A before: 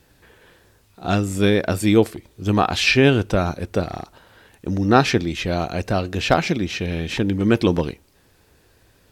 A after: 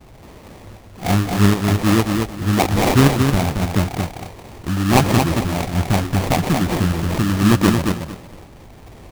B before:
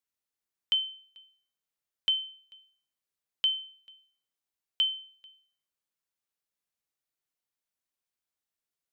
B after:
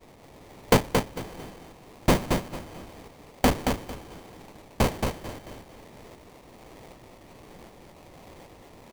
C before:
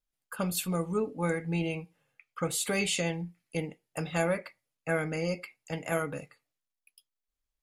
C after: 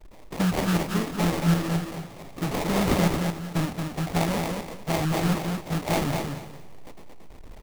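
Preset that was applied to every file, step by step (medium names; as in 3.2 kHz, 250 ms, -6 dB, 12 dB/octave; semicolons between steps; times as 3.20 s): jump at every zero crossing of -28.5 dBFS; expander -28 dBFS; reverb removal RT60 0.62 s; treble shelf 8 kHz -6 dB; comb 1 ms, depth 86%; in parallel at -3 dB: compression, threshold -26 dBFS; on the sum: tremolo saw up 1.3 Hz, depth 55%; sample-rate reducer 1.5 kHz, jitter 20%; on a send: feedback delay 225 ms, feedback 21%, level -5 dB; on the sum: trim +1 dB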